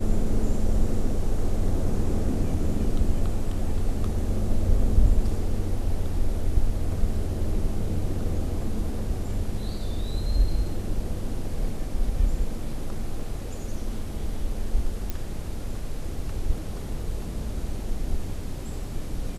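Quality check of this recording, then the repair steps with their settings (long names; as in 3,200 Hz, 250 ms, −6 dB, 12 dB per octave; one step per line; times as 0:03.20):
0:15.10: click −15 dBFS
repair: click removal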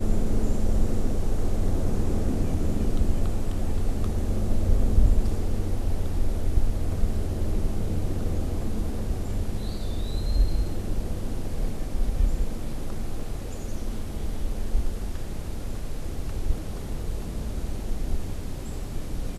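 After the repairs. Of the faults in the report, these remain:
0:15.10: click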